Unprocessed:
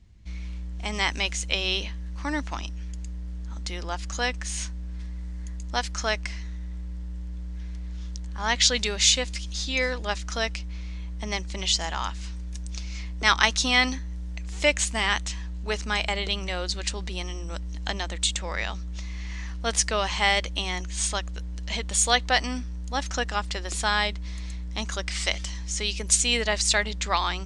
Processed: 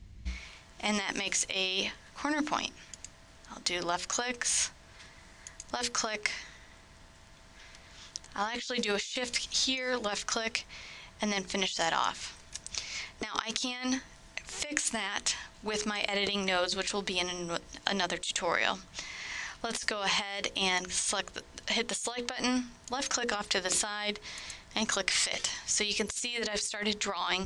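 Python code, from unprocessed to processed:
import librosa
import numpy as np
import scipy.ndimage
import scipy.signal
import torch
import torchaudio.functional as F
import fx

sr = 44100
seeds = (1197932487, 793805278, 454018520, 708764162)

y = fx.hum_notches(x, sr, base_hz=60, count=9)
y = fx.over_compress(y, sr, threshold_db=-32.0, ratio=-1.0)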